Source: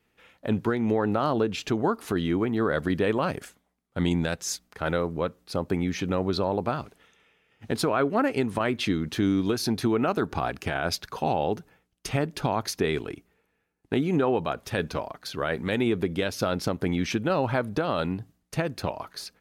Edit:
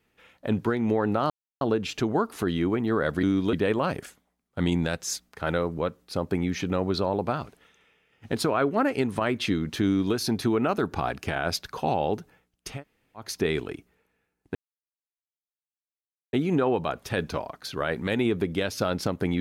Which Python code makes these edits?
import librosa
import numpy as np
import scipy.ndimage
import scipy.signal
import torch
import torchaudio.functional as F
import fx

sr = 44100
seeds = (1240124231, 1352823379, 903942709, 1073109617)

y = fx.edit(x, sr, fx.insert_silence(at_s=1.3, length_s=0.31),
    fx.duplicate(start_s=9.24, length_s=0.3, to_s=2.92),
    fx.room_tone_fill(start_s=12.11, length_s=0.54, crossfade_s=0.24),
    fx.insert_silence(at_s=13.94, length_s=1.78), tone=tone)